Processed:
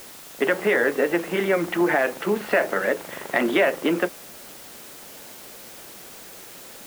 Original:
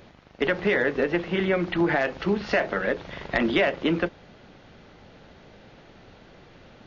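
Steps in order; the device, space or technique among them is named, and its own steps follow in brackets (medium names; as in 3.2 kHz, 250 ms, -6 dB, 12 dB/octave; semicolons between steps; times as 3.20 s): wax cylinder (band-pass 260–2700 Hz; wow and flutter; white noise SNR 18 dB); trim +3.5 dB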